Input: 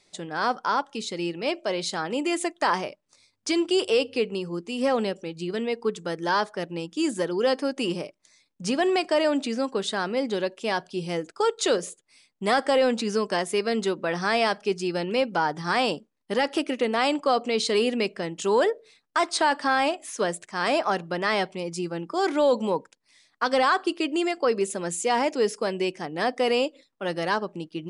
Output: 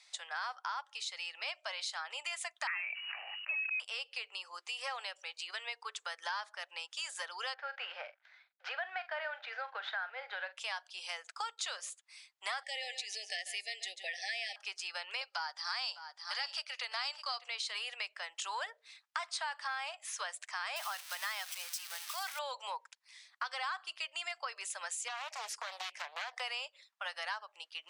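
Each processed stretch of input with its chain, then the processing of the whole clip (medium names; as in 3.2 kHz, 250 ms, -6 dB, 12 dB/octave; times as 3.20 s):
2.67–3.80 s: frequency inversion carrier 2.9 kHz + decay stretcher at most 38 dB/s
7.54–10.57 s: CVSD coder 64 kbps + cabinet simulation 440–3000 Hz, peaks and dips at 480 Hz +7 dB, 740 Hz +5 dB, 1.1 kHz -7 dB, 1.5 kHz +9 dB, 2.8 kHz -6 dB + doubling 43 ms -13.5 dB
12.63–14.56 s: brick-wall FIR band-stop 810–1700 Hz + dynamic bell 650 Hz, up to -7 dB, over -39 dBFS, Q 3.5 + delay 140 ms -13.5 dB
15.21–17.44 s: high-pass 480 Hz + peaking EQ 4.7 kHz +14.5 dB 0.37 oct + delay 605 ms -13.5 dB
20.76–22.39 s: zero-crossing glitches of -20.5 dBFS + bass shelf 420 Hz -10 dB + band-stop 7 kHz
25.08–26.40 s: compression 4:1, threshold -27 dBFS + loudspeaker Doppler distortion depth 0.64 ms
whole clip: Bessel high-pass 1.3 kHz, order 8; treble shelf 7.9 kHz -9 dB; compression 4:1, threshold -43 dBFS; trim +4.5 dB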